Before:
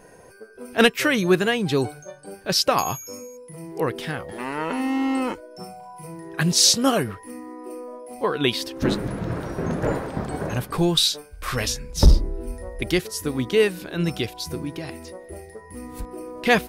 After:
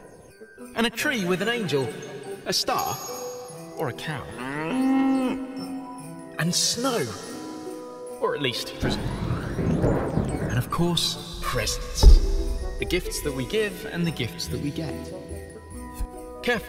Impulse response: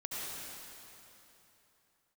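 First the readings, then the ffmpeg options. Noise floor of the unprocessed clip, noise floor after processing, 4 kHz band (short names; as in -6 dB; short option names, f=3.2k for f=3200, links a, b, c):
-46 dBFS, -43 dBFS, -4.0 dB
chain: -filter_complex "[0:a]aphaser=in_gain=1:out_gain=1:delay=2.9:decay=0.54:speed=0.2:type=triangular,acrossover=split=200[a][b];[b]acompressor=threshold=-19dB:ratio=4[c];[a][c]amix=inputs=2:normalize=0,asplit=2[d][e];[1:a]atrim=start_sample=2205,adelay=141[f];[e][f]afir=irnorm=-1:irlink=0,volume=-15dB[g];[d][g]amix=inputs=2:normalize=0,volume=-2dB"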